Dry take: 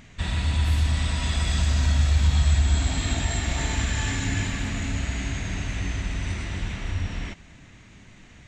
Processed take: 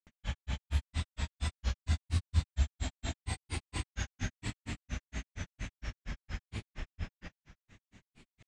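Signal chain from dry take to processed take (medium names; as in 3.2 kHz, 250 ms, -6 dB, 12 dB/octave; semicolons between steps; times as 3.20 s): granulator 118 ms, grains 4.3 per s, pitch spread up and down by 3 st; trim -6.5 dB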